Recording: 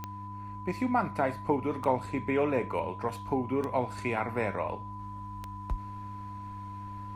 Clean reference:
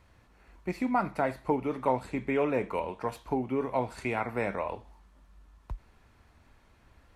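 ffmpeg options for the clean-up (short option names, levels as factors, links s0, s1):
-af "adeclick=t=4,bandreject=f=100.9:t=h:w=4,bandreject=f=201.8:t=h:w=4,bandreject=f=302.7:t=h:w=4,bandreject=f=1000:w=30,asetnsamples=n=441:p=0,asendcmd='4.99 volume volume -5dB',volume=1"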